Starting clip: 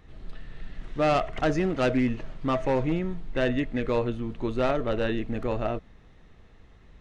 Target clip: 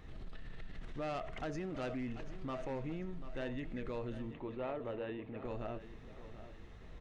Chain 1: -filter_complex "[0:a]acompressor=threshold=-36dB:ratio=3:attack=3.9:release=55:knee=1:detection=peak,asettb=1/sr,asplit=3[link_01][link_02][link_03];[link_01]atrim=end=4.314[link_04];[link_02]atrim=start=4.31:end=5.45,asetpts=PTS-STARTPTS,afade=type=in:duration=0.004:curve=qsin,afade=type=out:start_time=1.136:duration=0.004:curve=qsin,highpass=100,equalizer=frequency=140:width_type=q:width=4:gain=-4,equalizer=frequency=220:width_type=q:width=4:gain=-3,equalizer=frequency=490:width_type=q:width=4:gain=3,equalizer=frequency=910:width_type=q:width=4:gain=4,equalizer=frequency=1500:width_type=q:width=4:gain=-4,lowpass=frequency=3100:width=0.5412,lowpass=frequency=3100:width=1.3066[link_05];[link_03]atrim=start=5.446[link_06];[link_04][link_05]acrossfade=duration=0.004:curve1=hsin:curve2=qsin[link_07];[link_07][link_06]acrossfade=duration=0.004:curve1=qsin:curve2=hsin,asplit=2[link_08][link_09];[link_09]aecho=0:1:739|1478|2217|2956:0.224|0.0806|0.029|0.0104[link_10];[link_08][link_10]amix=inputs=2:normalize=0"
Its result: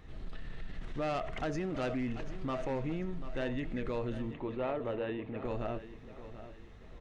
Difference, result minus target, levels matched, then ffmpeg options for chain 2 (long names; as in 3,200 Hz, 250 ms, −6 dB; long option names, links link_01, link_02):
downward compressor: peak gain reduction −5.5 dB
-filter_complex "[0:a]acompressor=threshold=-44dB:ratio=3:attack=3.9:release=55:knee=1:detection=peak,asettb=1/sr,asplit=3[link_01][link_02][link_03];[link_01]atrim=end=4.314[link_04];[link_02]atrim=start=4.31:end=5.45,asetpts=PTS-STARTPTS,afade=type=in:duration=0.004:curve=qsin,afade=type=out:start_time=1.136:duration=0.004:curve=qsin,highpass=100,equalizer=frequency=140:width_type=q:width=4:gain=-4,equalizer=frequency=220:width_type=q:width=4:gain=-3,equalizer=frequency=490:width_type=q:width=4:gain=3,equalizer=frequency=910:width_type=q:width=4:gain=4,equalizer=frequency=1500:width_type=q:width=4:gain=-4,lowpass=frequency=3100:width=0.5412,lowpass=frequency=3100:width=1.3066[link_05];[link_03]atrim=start=5.446[link_06];[link_04][link_05]acrossfade=duration=0.004:curve1=hsin:curve2=qsin[link_07];[link_07][link_06]acrossfade=duration=0.004:curve1=qsin:curve2=hsin,asplit=2[link_08][link_09];[link_09]aecho=0:1:739|1478|2217|2956:0.224|0.0806|0.029|0.0104[link_10];[link_08][link_10]amix=inputs=2:normalize=0"